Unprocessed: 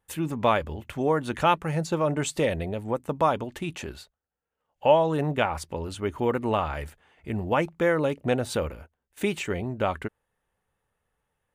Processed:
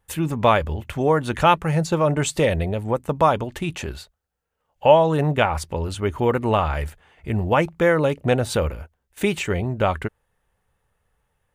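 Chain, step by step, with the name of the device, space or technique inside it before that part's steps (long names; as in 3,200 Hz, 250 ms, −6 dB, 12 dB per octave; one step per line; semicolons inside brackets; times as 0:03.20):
low shelf boost with a cut just above (low-shelf EQ 110 Hz +7 dB; parametric band 270 Hz −3.5 dB 0.77 octaves)
level +5.5 dB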